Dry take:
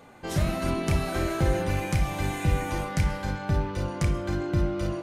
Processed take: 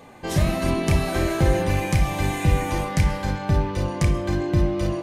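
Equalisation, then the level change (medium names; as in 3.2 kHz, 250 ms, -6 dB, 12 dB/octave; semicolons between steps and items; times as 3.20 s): Butterworth band-stop 1.4 kHz, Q 7.4; +5.0 dB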